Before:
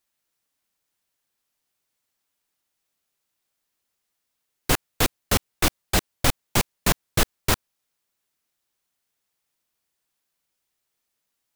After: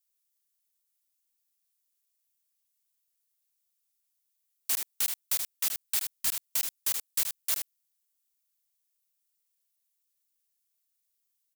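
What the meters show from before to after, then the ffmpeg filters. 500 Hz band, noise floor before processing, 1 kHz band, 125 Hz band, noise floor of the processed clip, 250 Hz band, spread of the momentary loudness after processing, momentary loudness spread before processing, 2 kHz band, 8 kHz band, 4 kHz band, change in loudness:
-26.0 dB, -79 dBFS, -20.5 dB, under -30 dB, -79 dBFS, under -25 dB, 3 LU, 3 LU, -14.5 dB, -3.0 dB, -9.0 dB, -4.5 dB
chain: -filter_complex "[0:a]aderivative,asplit=2[s0][s1];[s1]aecho=0:1:77:0.398[s2];[s0][s2]amix=inputs=2:normalize=0,alimiter=limit=0.224:level=0:latency=1,aeval=exprs='val(0)*sin(2*PI*460*n/s+460*0.7/5.4*sin(2*PI*5.4*n/s))':c=same"

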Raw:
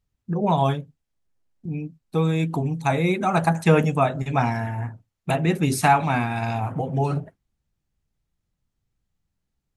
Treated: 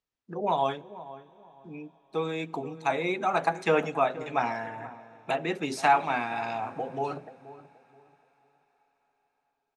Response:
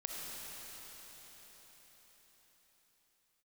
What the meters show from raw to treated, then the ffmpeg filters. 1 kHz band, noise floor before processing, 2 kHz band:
-3.5 dB, -80 dBFS, -3.5 dB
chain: -filter_complex "[0:a]acrossover=split=280 7000:gain=0.0891 1 0.1[s0][s1][s2];[s0][s1][s2]amix=inputs=3:normalize=0,asplit=2[s3][s4];[s4]adelay=479,lowpass=f=970:p=1,volume=0.188,asplit=2[s5][s6];[s6]adelay=479,lowpass=f=970:p=1,volume=0.29,asplit=2[s7][s8];[s8]adelay=479,lowpass=f=970:p=1,volume=0.29[s9];[s3][s5][s7][s9]amix=inputs=4:normalize=0,asplit=2[s10][s11];[1:a]atrim=start_sample=2205,asetrate=40572,aresample=44100,lowshelf=f=470:g=-9.5[s12];[s11][s12]afir=irnorm=-1:irlink=0,volume=0.0794[s13];[s10][s13]amix=inputs=2:normalize=0,volume=0.631"

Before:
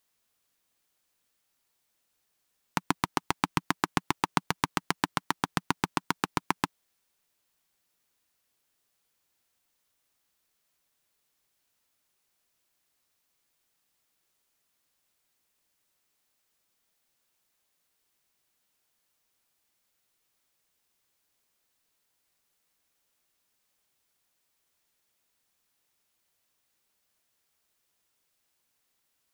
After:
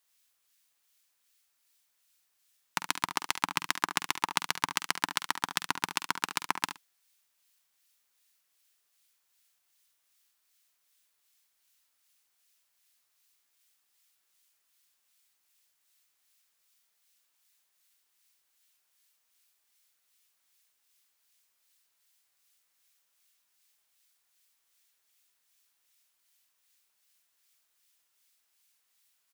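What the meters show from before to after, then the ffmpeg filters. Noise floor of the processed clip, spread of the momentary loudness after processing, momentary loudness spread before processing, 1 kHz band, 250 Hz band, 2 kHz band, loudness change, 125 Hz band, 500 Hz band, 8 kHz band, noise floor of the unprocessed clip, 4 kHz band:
-76 dBFS, 3 LU, 3 LU, -2.5 dB, -11.0 dB, +1.0 dB, -0.5 dB, -12.5 dB, -8.0 dB, +4.0 dB, -77 dBFS, +3.0 dB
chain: -filter_complex "[0:a]tiltshelf=f=790:g=-8.5,acrossover=split=1700[s0][s1];[s0]aeval=exprs='val(0)*(1-0.5/2+0.5/2*cos(2*PI*2.6*n/s))':c=same[s2];[s1]aeval=exprs='val(0)*(1-0.5/2-0.5/2*cos(2*PI*2.6*n/s))':c=same[s3];[s2][s3]amix=inputs=2:normalize=0,asplit=2[s4][s5];[s5]adelay=48,volume=0.211[s6];[s4][s6]amix=inputs=2:normalize=0,asplit=2[s7][s8];[s8]aecho=0:1:71:0.266[s9];[s7][s9]amix=inputs=2:normalize=0,volume=0.75"

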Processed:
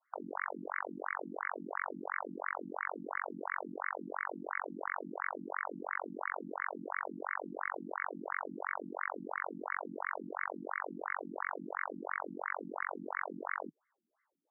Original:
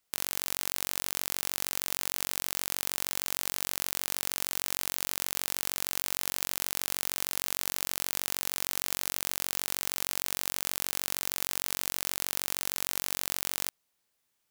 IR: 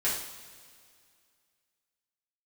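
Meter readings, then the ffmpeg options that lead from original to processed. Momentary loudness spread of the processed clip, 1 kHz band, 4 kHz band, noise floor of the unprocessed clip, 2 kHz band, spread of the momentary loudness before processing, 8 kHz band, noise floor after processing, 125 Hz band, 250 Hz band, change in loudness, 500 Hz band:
2 LU, +4.5 dB, under -40 dB, -78 dBFS, +1.0 dB, 0 LU, under -40 dB, -82 dBFS, -7.0 dB, +4.0 dB, -9.0 dB, +3.5 dB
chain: -af "equalizer=f=140:w=5.7:g=-4,afftfilt=real='re*between(b*sr/1024,230*pow(1600/230,0.5+0.5*sin(2*PI*2.9*pts/sr))/1.41,230*pow(1600/230,0.5+0.5*sin(2*PI*2.9*pts/sr))*1.41)':imag='im*between(b*sr/1024,230*pow(1600/230,0.5+0.5*sin(2*PI*2.9*pts/sr))/1.41,230*pow(1600/230,0.5+0.5*sin(2*PI*2.9*pts/sr))*1.41)':win_size=1024:overlap=0.75,volume=3.16"

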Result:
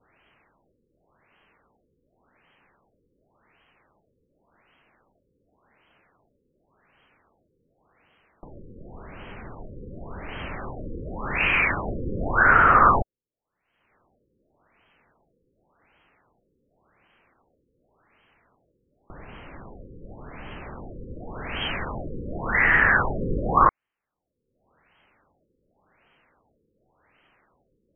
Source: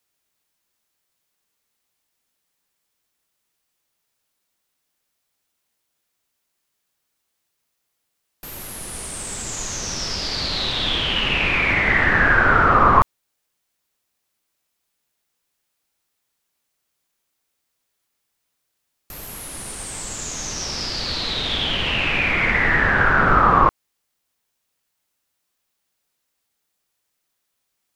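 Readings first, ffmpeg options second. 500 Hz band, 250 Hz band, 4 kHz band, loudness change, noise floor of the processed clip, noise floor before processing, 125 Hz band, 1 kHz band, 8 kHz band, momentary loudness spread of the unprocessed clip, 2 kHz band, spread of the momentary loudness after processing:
-4.5 dB, -5.0 dB, -17.0 dB, -3.0 dB, -76 dBFS, -76 dBFS, -5.5 dB, -3.5 dB, under -40 dB, 17 LU, -4.5 dB, 24 LU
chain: -af "adynamicequalizer=threshold=0.0355:dfrequency=1600:dqfactor=0.76:tfrequency=1600:tqfactor=0.76:attack=5:release=100:ratio=0.375:range=3:mode=boostabove:tftype=bell,acompressor=mode=upward:threshold=0.0447:ratio=2.5,afftfilt=real='re*lt(b*sr/1024,520*pow(3300/520,0.5+0.5*sin(2*PI*0.89*pts/sr)))':imag='im*lt(b*sr/1024,520*pow(3300/520,0.5+0.5*sin(2*PI*0.89*pts/sr)))':win_size=1024:overlap=0.75,volume=0.531"

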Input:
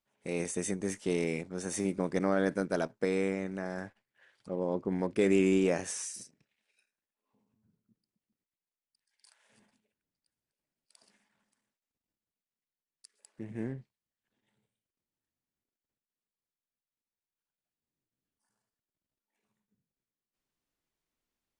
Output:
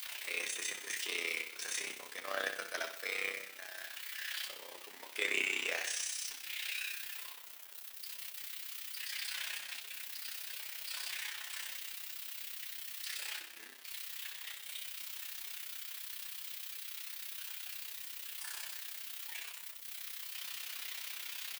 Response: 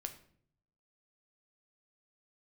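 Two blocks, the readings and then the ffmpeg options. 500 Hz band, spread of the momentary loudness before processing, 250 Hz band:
-16.0 dB, 13 LU, -25.5 dB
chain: -filter_complex "[0:a]aeval=exprs='val(0)+0.5*0.0133*sgn(val(0))':c=same,aderivative,agate=range=0.447:threshold=0.00447:ratio=16:detection=peak,highpass=130,acrossover=split=4100[s0][s1];[s1]acompressor=threshold=0.00141:ratio=4:attack=1:release=60[s2];[s0][s2]amix=inputs=2:normalize=0,acrossover=split=270 3700:gain=0.1 1 0.141[s3][s4][s5];[s3][s4][s5]amix=inputs=3:normalize=0,crystalizer=i=8.5:c=0,tremolo=f=32:d=0.919,asplit=2[s6][s7];[s7]adelay=12,volume=0.473[s8];[s6][s8]amix=inputs=2:normalize=0,asplit=2[s9][s10];[s10]aecho=0:1:62|124|186|248|310|372|434:0.355|0.199|0.111|0.0623|0.0349|0.0195|0.0109[s11];[s9][s11]amix=inputs=2:normalize=0,volume=2.82"

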